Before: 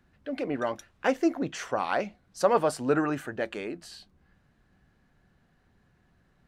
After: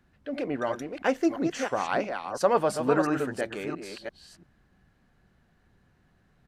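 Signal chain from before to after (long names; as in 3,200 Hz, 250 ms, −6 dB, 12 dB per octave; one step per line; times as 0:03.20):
delay that plays each chunk backwards 341 ms, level −6 dB
downsampling to 32,000 Hz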